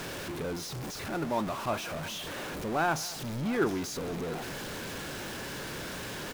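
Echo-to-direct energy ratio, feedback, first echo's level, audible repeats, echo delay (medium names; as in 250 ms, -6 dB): -15.5 dB, no regular repeats, -21.5 dB, 2, 212 ms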